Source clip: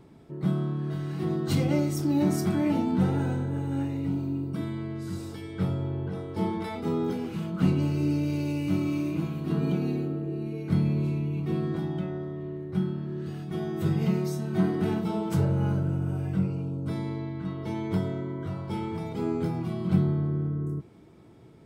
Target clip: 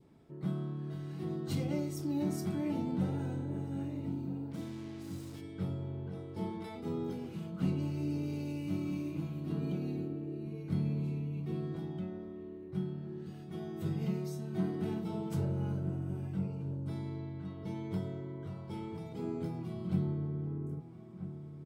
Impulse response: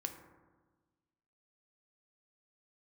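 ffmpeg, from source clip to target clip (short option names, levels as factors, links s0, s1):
-filter_complex "[0:a]asplit=3[s0][s1][s2];[s0]afade=t=out:st=4.5:d=0.02[s3];[s1]acrusher=bits=6:mix=0:aa=0.5,afade=t=in:st=4.5:d=0.02,afade=t=out:st=5.4:d=0.02[s4];[s2]afade=t=in:st=5.4:d=0.02[s5];[s3][s4][s5]amix=inputs=3:normalize=0,asplit=2[s6][s7];[s7]adelay=1283,volume=0.282,highshelf=f=4000:g=-28.9[s8];[s6][s8]amix=inputs=2:normalize=0,adynamicequalizer=threshold=0.00282:dfrequency=1400:dqfactor=1:tfrequency=1400:tqfactor=1:attack=5:release=100:ratio=0.375:range=2:mode=cutabove:tftype=bell,volume=0.355"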